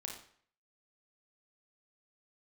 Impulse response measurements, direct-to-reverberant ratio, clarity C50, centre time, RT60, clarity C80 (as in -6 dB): 0.5 dB, 5.0 dB, 30 ms, 0.55 s, 9.0 dB